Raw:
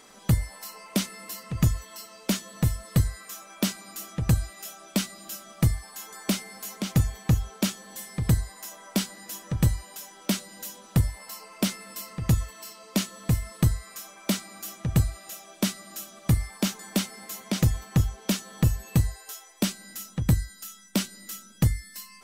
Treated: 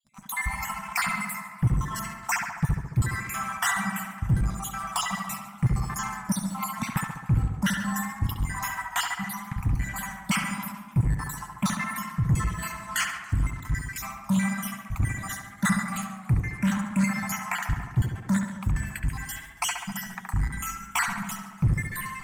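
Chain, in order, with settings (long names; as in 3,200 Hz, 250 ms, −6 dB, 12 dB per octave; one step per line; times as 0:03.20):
time-frequency cells dropped at random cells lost 60%
downward expander −52 dBFS
Chebyshev band-stop filter 210–730 Hz, order 2
bass and treble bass +9 dB, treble −6 dB
reversed playback
downward compressor 5 to 1, threshold −32 dBFS, peak gain reduction 20.5 dB
reversed playback
leveller curve on the samples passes 3
graphic EQ with 10 bands 125 Hz +7 dB, 250 Hz +3 dB, 500 Hz −12 dB, 1,000 Hz +8 dB, 2,000 Hz +9 dB, 4,000 Hz −9 dB, 8,000 Hz +6 dB
tape delay 69 ms, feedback 78%, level −3 dB, low-pass 2,200 Hz
convolution reverb RT60 0.95 s, pre-delay 103 ms, DRR 18 dB
feedback echo with a swinging delay time 142 ms, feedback 60%, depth 200 cents, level −20 dB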